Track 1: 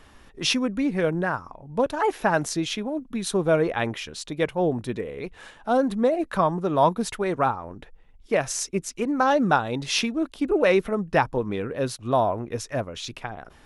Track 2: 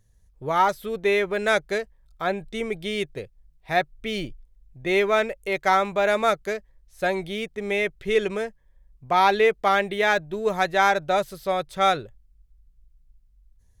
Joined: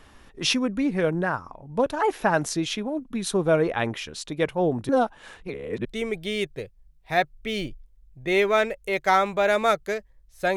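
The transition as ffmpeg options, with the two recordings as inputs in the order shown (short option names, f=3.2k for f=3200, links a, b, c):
-filter_complex "[0:a]apad=whole_dur=10.56,atrim=end=10.56,asplit=2[a][b];[a]atrim=end=4.892[c];[b]atrim=start=4.888:end=5.852,asetpts=PTS-STARTPTS,areverse[d];[1:a]atrim=start=2.438:end=7.15[e];[c][d]acrossfade=d=0.004:c1=hsin:c2=hsin[f];[f][e]acrossfade=d=0.004:c1=hsin:c2=hsin"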